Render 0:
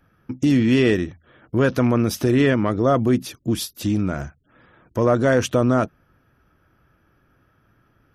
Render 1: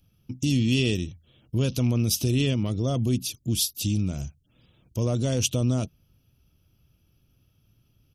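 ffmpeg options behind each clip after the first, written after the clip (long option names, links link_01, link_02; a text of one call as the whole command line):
ffmpeg -i in.wav -af "firequalizer=gain_entry='entry(110,0);entry(300,-10);entry(1700,-24);entry(2700,1);entry(6200,5)':delay=0.05:min_phase=1" out.wav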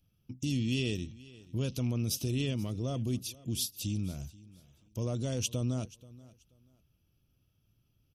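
ffmpeg -i in.wav -af "aecho=1:1:482|964:0.0891|0.0205,volume=-8.5dB" out.wav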